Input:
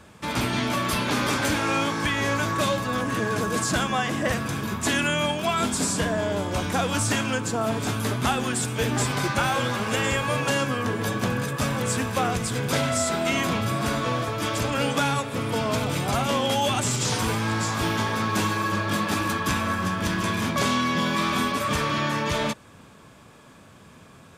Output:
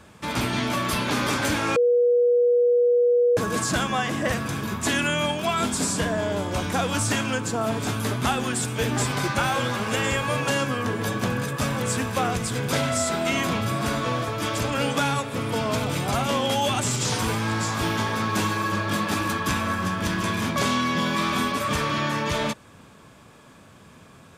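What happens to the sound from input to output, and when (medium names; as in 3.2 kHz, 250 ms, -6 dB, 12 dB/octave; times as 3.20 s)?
1.76–3.37 s: bleep 484 Hz -15.5 dBFS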